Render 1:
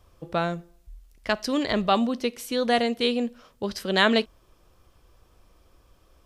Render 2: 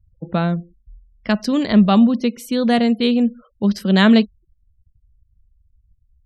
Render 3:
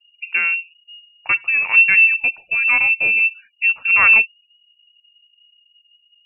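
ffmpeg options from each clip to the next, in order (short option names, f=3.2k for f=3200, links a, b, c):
-af "afftfilt=real='re*gte(hypot(re,im),0.00631)':imag='im*gte(hypot(re,im),0.00631)':win_size=1024:overlap=0.75,equalizer=f=200:t=o:w=0.73:g=15,volume=2dB"
-af "lowpass=f=2.5k:t=q:w=0.5098,lowpass=f=2.5k:t=q:w=0.6013,lowpass=f=2.5k:t=q:w=0.9,lowpass=f=2.5k:t=q:w=2.563,afreqshift=-2900"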